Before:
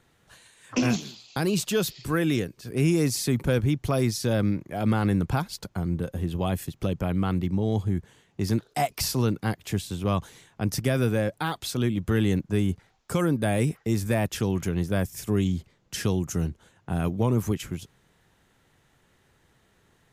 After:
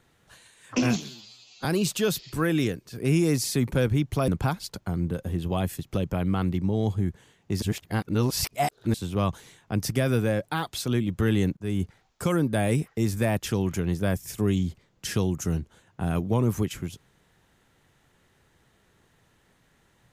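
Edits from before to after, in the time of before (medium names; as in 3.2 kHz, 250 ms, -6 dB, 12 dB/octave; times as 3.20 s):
1.09–1.37 s: stretch 2×
4.00–5.17 s: delete
8.51–9.83 s: reverse
12.46–12.72 s: fade in, from -15.5 dB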